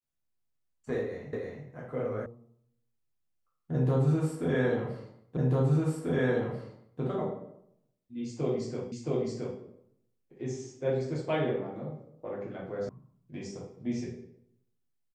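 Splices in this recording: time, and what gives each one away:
1.33 repeat of the last 0.32 s
2.26 sound cut off
5.37 repeat of the last 1.64 s
8.92 repeat of the last 0.67 s
12.89 sound cut off

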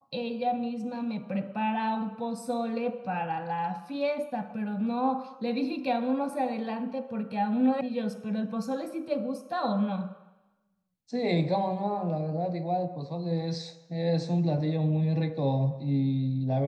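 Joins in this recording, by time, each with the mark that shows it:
7.81 sound cut off

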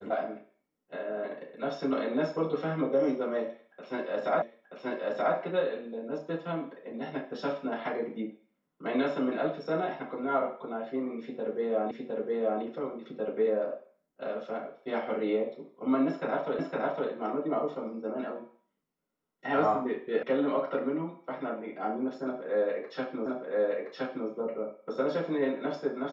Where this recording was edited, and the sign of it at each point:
4.42 repeat of the last 0.93 s
11.91 repeat of the last 0.71 s
16.59 repeat of the last 0.51 s
20.23 sound cut off
23.26 repeat of the last 1.02 s

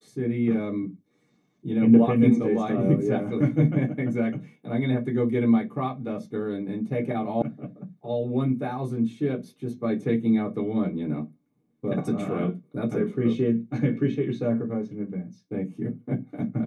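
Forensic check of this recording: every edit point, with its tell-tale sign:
7.42 sound cut off

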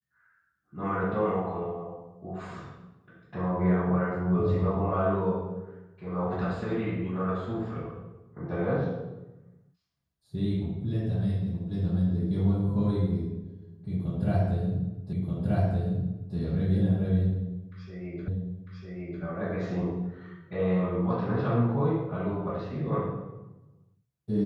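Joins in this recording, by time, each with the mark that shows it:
15.13 repeat of the last 1.23 s
18.28 repeat of the last 0.95 s

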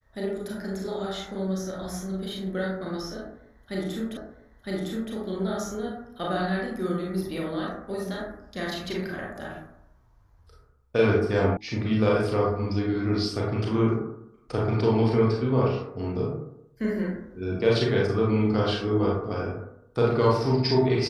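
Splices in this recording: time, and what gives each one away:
4.17 repeat of the last 0.96 s
11.57 sound cut off

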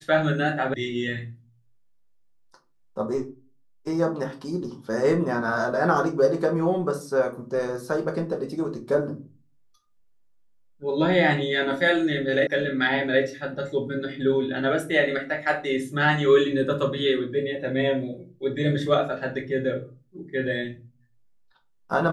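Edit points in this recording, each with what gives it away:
0.74 sound cut off
12.47 sound cut off

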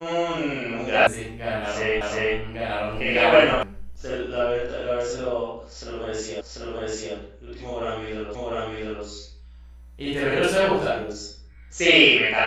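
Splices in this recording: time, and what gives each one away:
1.07 sound cut off
2.01 repeat of the last 0.36 s
3.63 sound cut off
6.41 repeat of the last 0.74 s
8.35 repeat of the last 0.7 s

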